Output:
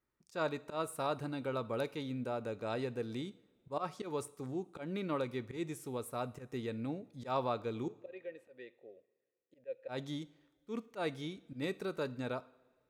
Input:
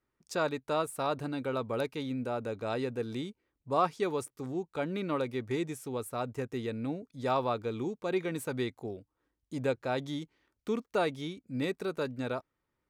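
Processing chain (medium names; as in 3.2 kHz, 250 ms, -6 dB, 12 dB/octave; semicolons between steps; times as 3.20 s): 7.88–9.88 s: vowel filter e; slow attack 114 ms; two-slope reverb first 0.53 s, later 2.3 s, from -18 dB, DRR 15 dB; trim -4 dB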